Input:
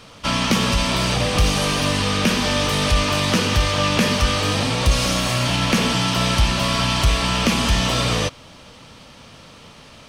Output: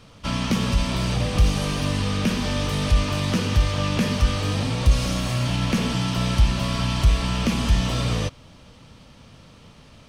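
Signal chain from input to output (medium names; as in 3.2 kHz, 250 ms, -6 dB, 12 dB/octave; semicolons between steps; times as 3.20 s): bass shelf 260 Hz +10 dB; trim -8.5 dB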